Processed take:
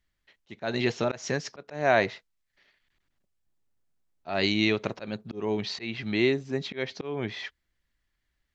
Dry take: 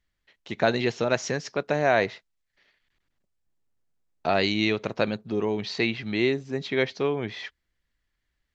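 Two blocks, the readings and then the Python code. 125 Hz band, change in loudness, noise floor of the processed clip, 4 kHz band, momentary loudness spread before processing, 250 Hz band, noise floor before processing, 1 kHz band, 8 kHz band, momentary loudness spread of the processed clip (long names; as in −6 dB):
−2.0 dB, −2.5 dB, −79 dBFS, −1.0 dB, 9 LU, −2.0 dB, −79 dBFS, −3.5 dB, can't be measured, 13 LU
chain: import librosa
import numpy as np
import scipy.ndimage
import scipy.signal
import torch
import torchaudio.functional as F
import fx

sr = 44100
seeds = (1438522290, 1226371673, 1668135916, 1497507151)

y = fx.notch(x, sr, hz=480.0, q=15.0)
y = fx.auto_swell(y, sr, attack_ms=206.0)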